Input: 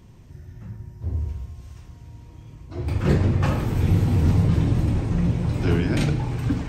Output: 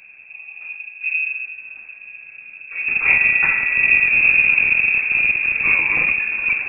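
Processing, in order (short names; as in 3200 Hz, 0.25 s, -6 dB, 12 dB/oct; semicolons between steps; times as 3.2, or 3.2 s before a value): rattling part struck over -17 dBFS, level -24 dBFS; 3.05–4.07 whine 650 Hz -27 dBFS; inverted band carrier 2600 Hz; gain +3 dB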